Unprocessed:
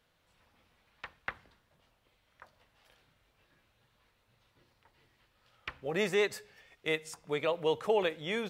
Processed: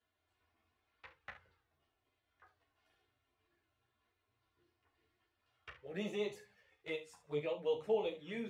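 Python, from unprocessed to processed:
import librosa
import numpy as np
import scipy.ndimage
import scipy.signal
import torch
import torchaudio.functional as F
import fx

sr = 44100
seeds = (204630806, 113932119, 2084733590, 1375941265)

y = scipy.signal.sosfilt(scipy.signal.butter(2, 55.0, 'highpass', fs=sr, output='sos'), x)
y = fx.high_shelf(y, sr, hz=3200.0, db=-7.0)
y = fx.comb_fb(y, sr, f0_hz=150.0, decay_s=0.83, harmonics='all', damping=0.0, mix_pct=40)
y = fx.env_flanger(y, sr, rest_ms=2.9, full_db=-33.0)
y = fx.room_early_taps(y, sr, ms=(34, 68), db=(-9.5, -12.5))
y = fx.ensemble(y, sr)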